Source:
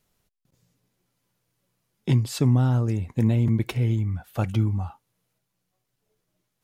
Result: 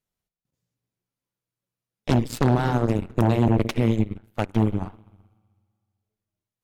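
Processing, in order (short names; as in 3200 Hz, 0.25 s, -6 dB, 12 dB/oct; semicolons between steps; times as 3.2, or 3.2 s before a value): spring tank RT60 2 s, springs 42/54 ms, chirp 45 ms, DRR 8.5 dB; added harmonics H 3 -18 dB, 6 -7 dB, 7 -24 dB, 8 -16 dB, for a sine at -9.5 dBFS; 4.04–4.62 upward expander 1.5:1, over -37 dBFS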